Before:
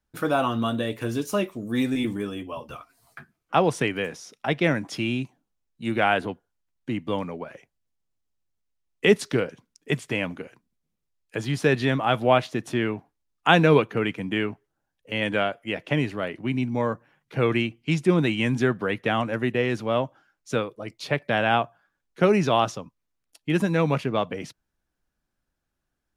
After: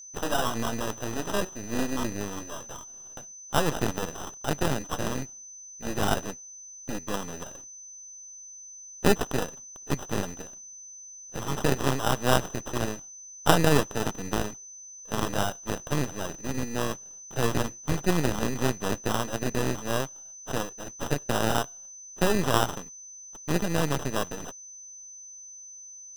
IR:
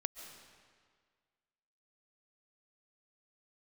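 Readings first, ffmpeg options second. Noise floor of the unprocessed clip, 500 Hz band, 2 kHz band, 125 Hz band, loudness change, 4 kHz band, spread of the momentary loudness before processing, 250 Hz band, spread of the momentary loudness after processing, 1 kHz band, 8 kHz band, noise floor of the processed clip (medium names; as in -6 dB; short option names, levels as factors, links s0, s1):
-80 dBFS, -5.5 dB, -6.0 dB, -3.5 dB, -4.5 dB, -2.0 dB, 14 LU, -5.0 dB, 17 LU, -3.5 dB, +11.5 dB, -46 dBFS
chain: -af "highshelf=f=2300:g=12,acrusher=samples=20:mix=1:aa=0.000001,aeval=exprs='max(val(0),0)':c=same,aeval=exprs='val(0)+0.00891*sin(2*PI*6100*n/s)':c=same,volume=0.841"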